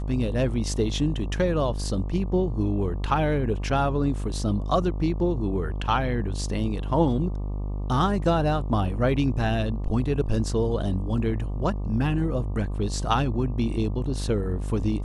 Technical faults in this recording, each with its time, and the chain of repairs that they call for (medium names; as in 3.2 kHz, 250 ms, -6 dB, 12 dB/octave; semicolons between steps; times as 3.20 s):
buzz 50 Hz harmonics 24 -29 dBFS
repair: de-hum 50 Hz, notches 24